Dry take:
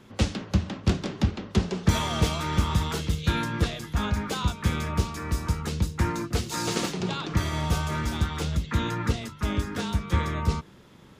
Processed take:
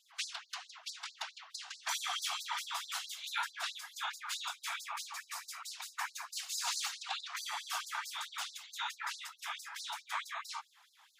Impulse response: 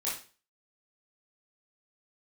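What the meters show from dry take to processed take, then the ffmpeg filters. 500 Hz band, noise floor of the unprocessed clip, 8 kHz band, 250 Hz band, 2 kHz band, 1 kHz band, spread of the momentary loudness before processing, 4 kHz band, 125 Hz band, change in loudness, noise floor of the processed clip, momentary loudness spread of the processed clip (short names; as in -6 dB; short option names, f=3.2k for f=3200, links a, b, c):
-27.5 dB, -50 dBFS, -3.5 dB, under -40 dB, -6.0 dB, -8.5 dB, 4 LU, -4.5 dB, under -40 dB, -11.5 dB, -67 dBFS, 8 LU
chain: -af "afftfilt=real='hypot(re,im)*cos(2*PI*random(0))':imag='hypot(re,im)*sin(2*PI*random(1))':win_size=512:overlap=0.75,afftfilt=real='re*gte(b*sr/1024,640*pow(4000/640,0.5+0.5*sin(2*PI*4.6*pts/sr)))':imag='im*gte(b*sr/1024,640*pow(4000/640,0.5+0.5*sin(2*PI*4.6*pts/sr)))':win_size=1024:overlap=0.75,volume=2.5dB"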